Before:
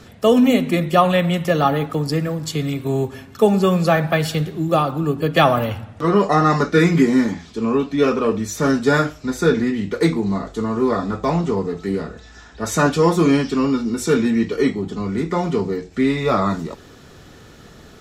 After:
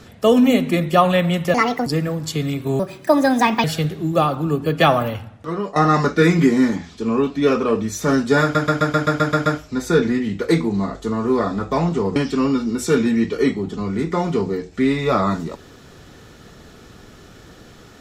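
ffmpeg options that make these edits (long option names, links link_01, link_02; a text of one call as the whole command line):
ffmpeg -i in.wav -filter_complex "[0:a]asplit=15[link_01][link_02][link_03][link_04][link_05][link_06][link_07][link_08][link_09][link_10][link_11][link_12][link_13][link_14][link_15];[link_01]atrim=end=1.544[link_16];[link_02]atrim=start=1.54:end=2.06,asetpts=PTS-STARTPTS,asetrate=71001,aresample=44100,atrim=end_sample=14243,asetpts=PTS-STARTPTS[link_17];[link_03]atrim=start=2.056:end=2.994[link_18];[link_04]atrim=start=2.99:end=4.2,asetpts=PTS-STARTPTS,asetrate=63063,aresample=44100,atrim=end_sample=37315,asetpts=PTS-STARTPTS[link_19];[link_05]atrim=start=4.196:end=6.32,asetpts=PTS-STARTPTS,afade=type=out:start_time=1.164:duration=0.96:silence=0.211349[link_20];[link_06]atrim=start=6.32:end=9.112,asetpts=PTS-STARTPTS,afade=type=in:duration=0.004:curve=hsin:silence=0.211349[link_21];[link_07]atrim=start=8.978:end=9.112[link_22];[link_08]atrim=start=8.978:end=9.112[link_23];[link_09]atrim=start=8.978:end=9.112[link_24];[link_10]atrim=start=8.978:end=9.112[link_25];[link_11]atrim=start=8.978:end=9.112[link_26];[link_12]atrim=start=8.978:end=9.112[link_27];[link_13]atrim=start=8.978:end=9.112[link_28];[link_14]atrim=start=8.978:end=11.682[link_29];[link_15]atrim=start=13.348[link_30];[link_16][link_17]acrossfade=duration=0.004:curve1=hsin:curve2=hsin[link_31];[link_31][link_18]acrossfade=duration=0.004:curve1=hsin:curve2=hsin[link_32];[link_32][link_19]acrossfade=duration=0.004:curve1=hsin:curve2=hsin[link_33];[link_20][link_21]concat=n=2:v=0:a=1[link_34];[link_33][link_34]acrossfade=duration=0.004:curve1=hsin:curve2=hsin[link_35];[link_35][link_22]acrossfade=duration=0.004:curve1=hsin:curve2=hsin[link_36];[link_36][link_23]acrossfade=duration=0.004:curve1=hsin:curve2=hsin[link_37];[link_37][link_24]acrossfade=duration=0.004:curve1=hsin:curve2=hsin[link_38];[link_38][link_25]acrossfade=duration=0.004:curve1=hsin:curve2=hsin[link_39];[link_39][link_26]acrossfade=duration=0.004:curve1=hsin:curve2=hsin[link_40];[link_40][link_27]acrossfade=duration=0.004:curve1=hsin:curve2=hsin[link_41];[link_41][link_28]acrossfade=duration=0.004:curve1=hsin:curve2=hsin[link_42];[link_42][link_29]acrossfade=duration=0.004:curve1=hsin:curve2=hsin[link_43];[link_43][link_30]acrossfade=duration=0.004:curve1=hsin:curve2=hsin" out.wav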